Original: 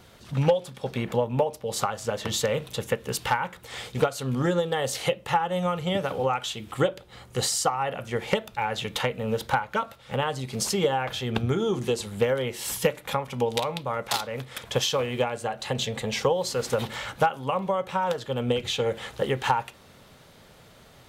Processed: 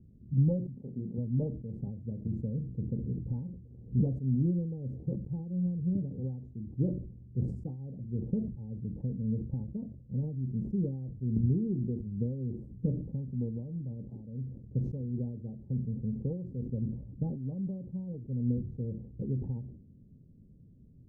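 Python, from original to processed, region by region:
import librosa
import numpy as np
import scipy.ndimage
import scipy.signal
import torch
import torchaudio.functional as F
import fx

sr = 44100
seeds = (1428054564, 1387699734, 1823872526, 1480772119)

y = fx.chain(x, sr, fx.highpass(hz=300.0, slope=6),
    fx.doubler(ms=28.0, db=-5), at=(0.74, 1.18))
y = fx.chain(y, sr, fx.dispersion(late='highs', ms=127.0, hz=2100.0),
    fx.pre_swell(db_per_s=100.0), at=(2.98, 4.06))
y = scipy.signal.sosfilt(scipy.signal.cheby2(4, 70, 1200.0, 'lowpass', fs=sr, output='sos'), y)
y = fx.sustainer(y, sr, db_per_s=75.0)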